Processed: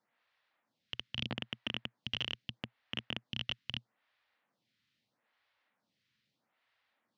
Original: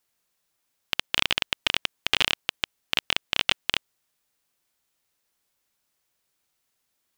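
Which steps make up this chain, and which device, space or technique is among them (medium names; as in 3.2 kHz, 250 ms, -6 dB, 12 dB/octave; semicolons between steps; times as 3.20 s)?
vibe pedal into a guitar amplifier (lamp-driven phase shifter 0.78 Hz; valve stage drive 32 dB, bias 0.5; cabinet simulation 110–4100 Hz, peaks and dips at 120 Hz +7 dB, 220 Hz +6 dB, 390 Hz -9 dB, 1.9 kHz +4 dB); trim +7 dB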